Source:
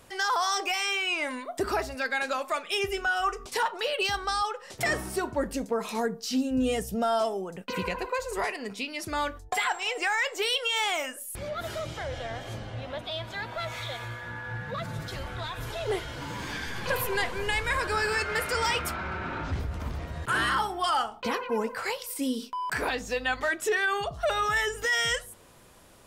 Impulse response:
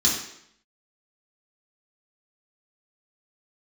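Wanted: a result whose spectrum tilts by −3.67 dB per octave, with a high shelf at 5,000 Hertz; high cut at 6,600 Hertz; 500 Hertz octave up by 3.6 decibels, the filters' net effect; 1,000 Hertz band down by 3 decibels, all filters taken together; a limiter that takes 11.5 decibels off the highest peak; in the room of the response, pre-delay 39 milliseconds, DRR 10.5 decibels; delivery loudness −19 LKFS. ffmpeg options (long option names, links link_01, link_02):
-filter_complex "[0:a]lowpass=6600,equalizer=frequency=500:width_type=o:gain=6,equalizer=frequency=1000:width_type=o:gain=-6.5,highshelf=frequency=5000:gain=6.5,alimiter=level_in=1dB:limit=-24dB:level=0:latency=1,volume=-1dB,asplit=2[link_01][link_02];[1:a]atrim=start_sample=2205,adelay=39[link_03];[link_02][link_03]afir=irnorm=-1:irlink=0,volume=-23dB[link_04];[link_01][link_04]amix=inputs=2:normalize=0,volume=14dB"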